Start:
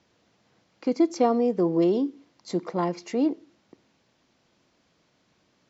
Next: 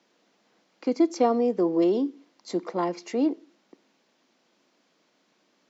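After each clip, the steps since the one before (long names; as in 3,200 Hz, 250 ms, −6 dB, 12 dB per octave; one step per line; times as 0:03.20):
high-pass filter 210 Hz 24 dB per octave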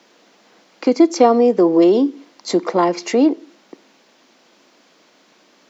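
low-shelf EQ 140 Hz −9.5 dB
in parallel at +0.5 dB: downward compressor, threshold −30 dBFS, peak gain reduction 12.5 dB
on the sum: level +8.5 dB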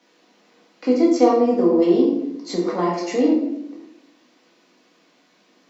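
rectangular room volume 230 cubic metres, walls mixed, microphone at 1.9 metres
level −11 dB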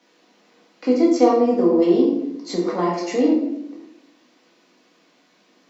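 no processing that can be heard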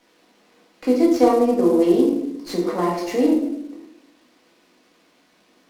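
variable-slope delta modulation 64 kbit/s
windowed peak hold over 3 samples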